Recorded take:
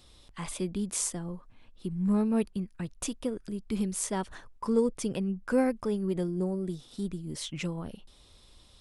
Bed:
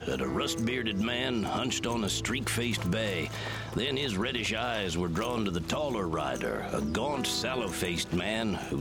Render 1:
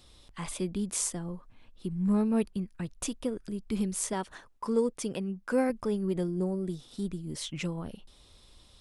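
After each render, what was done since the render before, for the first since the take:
0:04.13–0:05.70: low-shelf EQ 130 Hz −11 dB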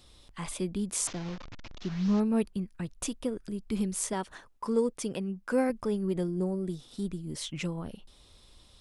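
0:01.07–0:02.20: linear delta modulator 32 kbit/s, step −37.5 dBFS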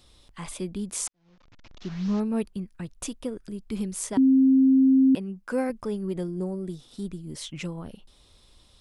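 0:01.08–0:01.88: fade in quadratic
0:04.17–0:05.15: beep over 265 Hz −14.5 dBFS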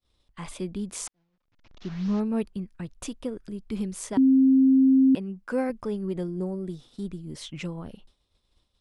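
downward expander −46 dBFS
high-shelf EQ 7,000 Hz −8.5 dB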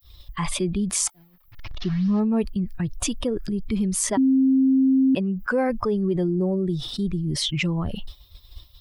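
spectral dynamics exaggerated over time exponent 1.5
envelope flattener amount 70%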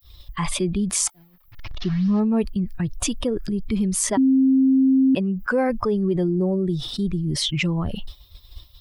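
level +1.5 dB

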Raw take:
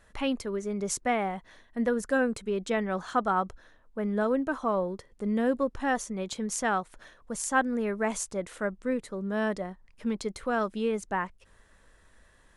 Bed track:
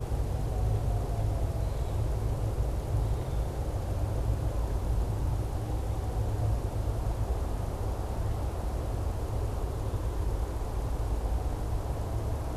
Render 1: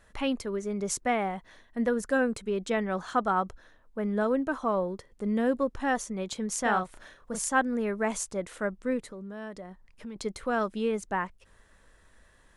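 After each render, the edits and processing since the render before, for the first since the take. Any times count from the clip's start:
0:06.62–0:07.49: double-tracking delay 33 ms −3.5 dB
0:09.11–0:10.16: downward compressor 3 to 1, threshold −40 dBFS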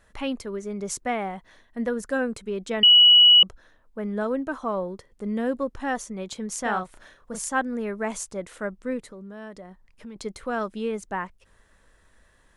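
0:02.83–0:03.43: beep over 2,930 Hz −10 dBFS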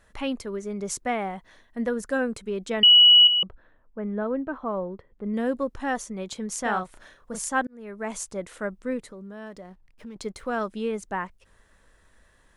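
0:03.27–0:05.34: high-frequency loss of the air 490 metres
0:07.67–0:08.24: fade in
0:09.46–0:10.57: slack as between gear wheels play −57 dBFS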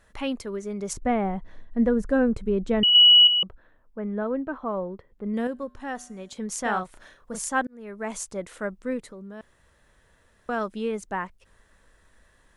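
0:00.93–0:02.95: spectral tilt −3.5 dB per octave
0:05.47–0:06.37: tuned comb filter 82 Hz, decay 1.1 s, harmonics odd, mix 50%
0:09.41–0:10.49: fill with room tone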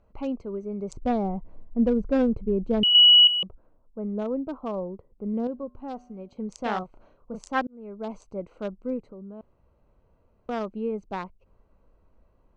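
adaptive Wiener filter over 25 samples
low-pass filter 6,800 Hz 24 dB per octave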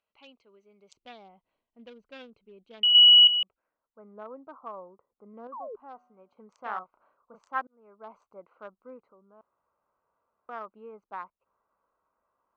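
band-pass filter sweep 3,200 Hz → 1,200 Hz, 0:03.30–0:04.11
0:05.52–0:05.76: sound drawn into the spectrogram fall 390–1,200 Hz −39 dBFS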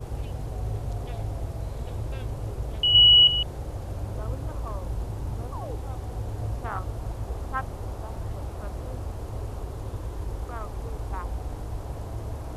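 mix in bed track −2 dB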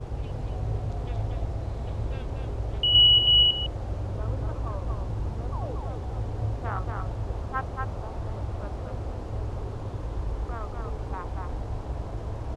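high-frequency loss of the air 87 metres
single-tap delay 235 ms −4 dB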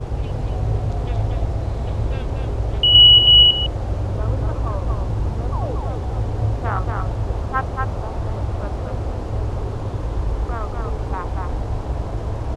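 level +8.5 dB
brickwall limiter −2 dBFS, peak gain reduction 1 dB

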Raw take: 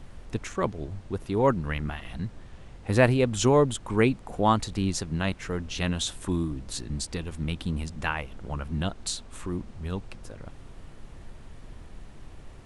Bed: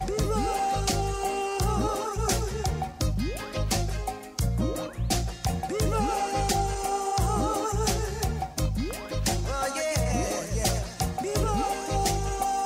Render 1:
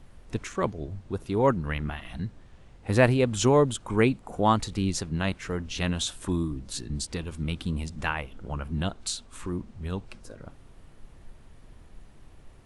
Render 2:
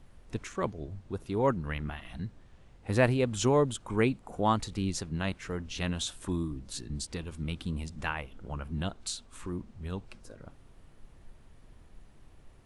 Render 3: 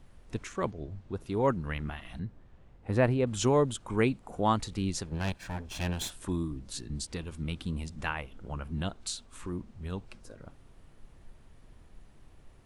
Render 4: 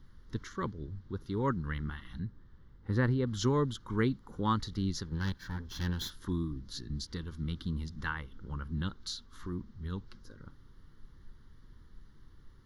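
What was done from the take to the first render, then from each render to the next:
noise reduction from a noise print 6 dB
level −4.5 dB
0:00.71–0:01.21: high-frequency loss of the air 54 metres; 0:02.19–0:03.27: high-shelf EQ 2,700 Hz −11.5 dB; 0:05.06–0:06.10: lower of the sound and its delayed copy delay 1.2 ms
phaser with its sweep stopped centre 2,500 Hz, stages 6

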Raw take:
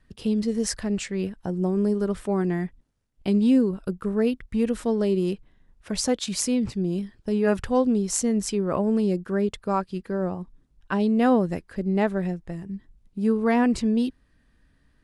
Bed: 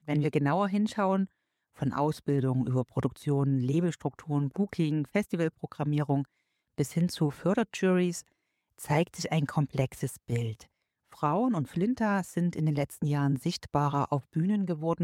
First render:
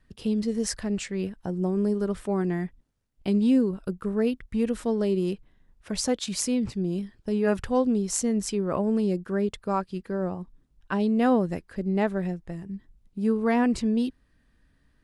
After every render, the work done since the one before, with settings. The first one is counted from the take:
level −2 dB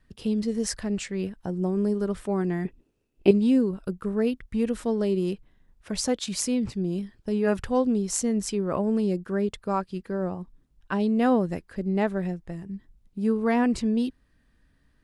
0:02.65–0:03.31: hollow resonant body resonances 370/2,600 Hz, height 17 dB, ringing for 20 ms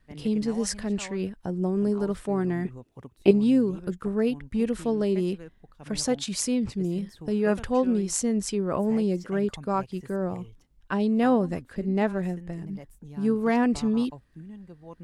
mix in bed −15.5 dB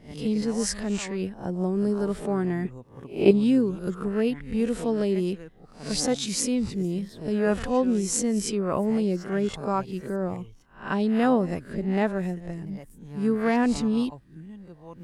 peak hold with a rise ahead of every peak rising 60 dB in 0.37 s

